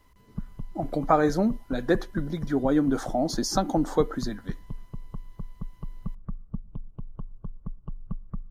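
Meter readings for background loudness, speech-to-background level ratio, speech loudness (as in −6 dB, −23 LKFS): −42.0 LKFS, 15.5 dB, −26.5 LKFS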